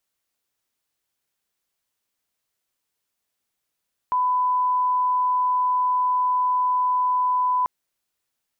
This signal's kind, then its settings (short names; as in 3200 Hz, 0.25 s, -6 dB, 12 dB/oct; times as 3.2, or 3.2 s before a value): line-up tone -18 dBFS 3.54 s